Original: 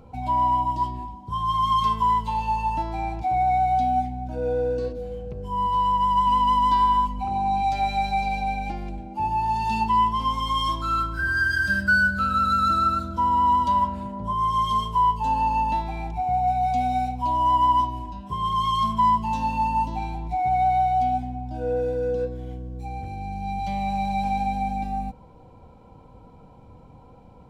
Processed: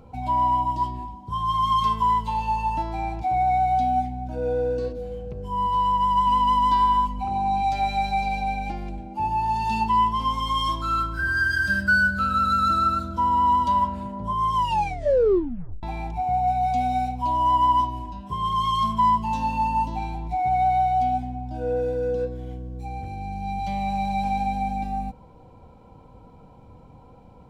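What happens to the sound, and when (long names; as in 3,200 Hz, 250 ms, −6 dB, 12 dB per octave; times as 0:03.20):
0:14.54: tape stop 1.29 s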